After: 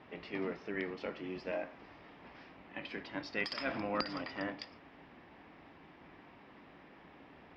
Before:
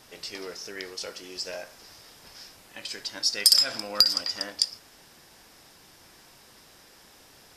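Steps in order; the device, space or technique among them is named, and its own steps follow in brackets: sub-octave bass pedal (octaver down 1 oct, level -2 dB; speaker cabinet 61–2400 Hz, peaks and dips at 81 Hz -6 dB, 120 Hz -9 dB, 280 Hz +6 dB, 490 Hz -3 dB, 1500 Hz -6 dB); gain +1 dB

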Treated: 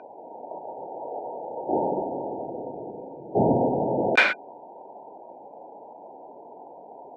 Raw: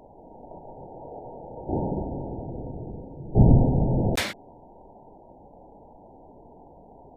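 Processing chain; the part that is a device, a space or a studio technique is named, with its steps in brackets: tin-can telephone (BPF 440–2600 Hz; small resonant body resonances 1500/2400 Hz, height 17 dB, ringing for 50 ms); gain +8 dB

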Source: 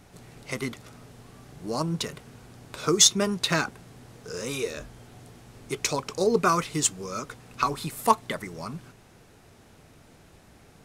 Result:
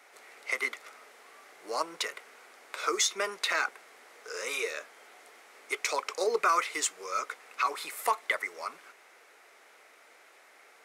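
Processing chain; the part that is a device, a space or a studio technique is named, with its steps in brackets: laptop speaker (HPF 440 Hz 24 dB/oct; bell 1300 Hz +5.5 dB 0.57 oct; bell 2100 Hz +10 dB 0.46 oct; limiter -13.5 dBFS, peak gain reduction 10.5 dB); gain -2.5 dB

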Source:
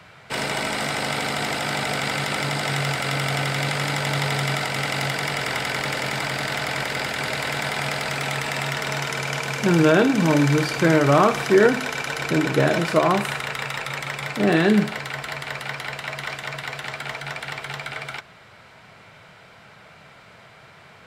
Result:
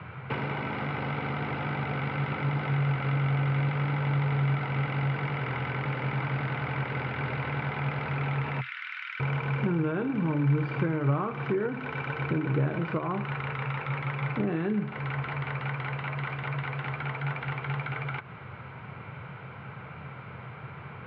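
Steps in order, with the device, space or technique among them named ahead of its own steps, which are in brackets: 8.61–9.2 steep high-pass 1500 Hz 36 dB/oct; bass amplifier (compressor 5:1, threshold -34 dBFS, peak gain reduction 20 dB; speaker cabinet 80–2300 Hz, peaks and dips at 85 Hz +9 dB, 130 Hz +10 dB, 650 Hz -9 dB, 1800 Hz -8 dB); gain +6 dB

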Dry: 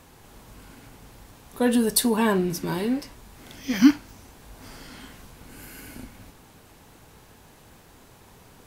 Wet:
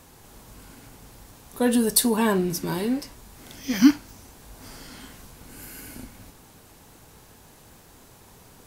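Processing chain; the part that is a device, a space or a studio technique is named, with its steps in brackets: exciter from parts (in parallel at -4 dB: HPF 3800 Hz 12 dB/oct + soft clip -19 dBFS, distortion -9 dB)

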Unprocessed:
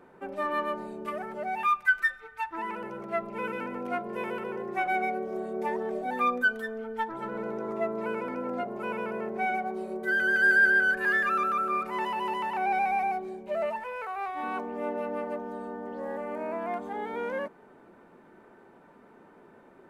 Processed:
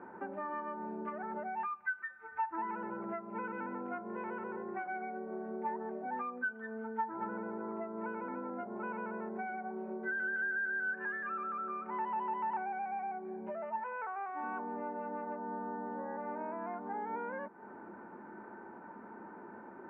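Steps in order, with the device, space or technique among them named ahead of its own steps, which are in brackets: bass amplifier (compressor 5:1, threshold -43 dBFS, peak gain reduction 21.5 dB; speaker cabinet 67–2100 Hz, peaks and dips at 150 Hz -5 dB, 210 Hz +8 dB, 330 Hz +6 dB, 900 Hz +10 dB, 1500 Hz +7 dB)

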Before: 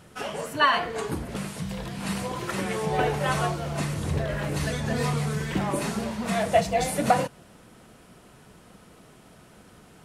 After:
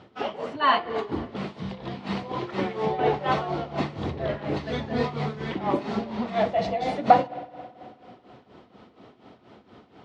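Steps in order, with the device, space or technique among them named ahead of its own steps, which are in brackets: combo amplifier with spring reverb and tremolo (spring tank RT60 2.8 s, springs 54 ms, chirp 30 ms, DRR 15.5 dB; tremolo 4.2 Hz, depth 76%; speaker cabinet 97–4100 Hz, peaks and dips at 160 Hz -8 dB, 260 Hz +4 dB, 370 Hz +4 dB, 790 Hz +4 dB, 1600 Hz -6 dB, 2600 Hz -4 dB); gain +3.5 dB

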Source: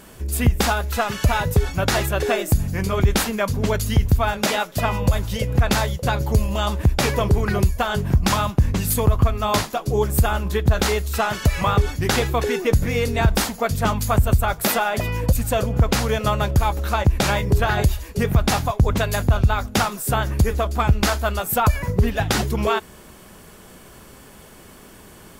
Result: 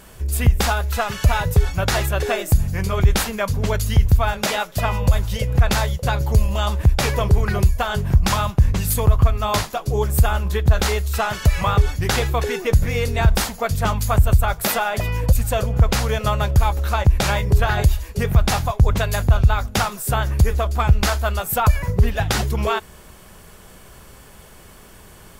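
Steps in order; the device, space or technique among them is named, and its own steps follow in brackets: low shelf boost with a cut just above (low shelf 75 Hz +6.5 dB; bell 270 Hz -6 dB 1 oct)

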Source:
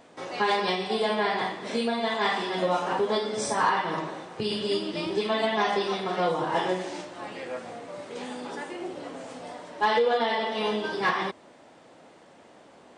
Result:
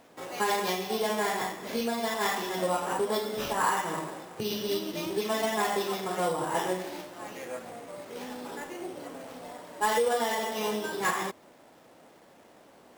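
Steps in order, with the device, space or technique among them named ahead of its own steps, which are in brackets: early companding sampler (sample-rate reducer 8800 Hz, jitter 0%; companded quantiser 6-bit); gain -3 dB

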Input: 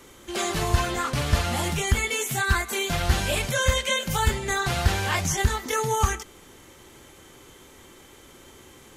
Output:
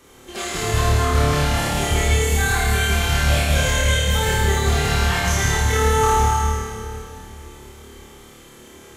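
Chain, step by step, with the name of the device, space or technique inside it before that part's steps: tunnel (flutter echo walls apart 4.7 m, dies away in 0.75 s; reverb RT60 2.9 s, pre-delay 79 ms, DRR -1.5 dB); gain -3 dB

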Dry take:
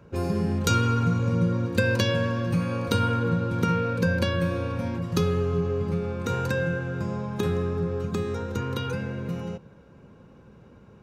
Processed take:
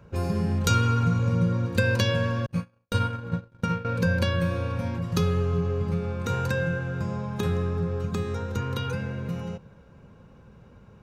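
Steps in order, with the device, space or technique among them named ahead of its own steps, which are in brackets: 2.46–3.85 gate -22 dBFS, range -58 dB; low shelf boost with a cut just above (low shelf 66 Hz +7 dB; bell 320 Hz -5.5 dB 0.89 oct)

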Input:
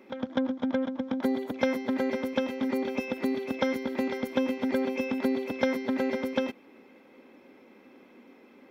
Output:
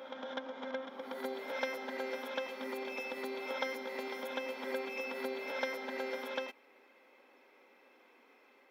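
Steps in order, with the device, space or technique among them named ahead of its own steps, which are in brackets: ghost voice (reverse; reverb RT60 1.2 s, pre-delay 39 ms, DRR 2.5 dB; reverse; HPF 650 Hz 12 dB/oct); gain -5 dB

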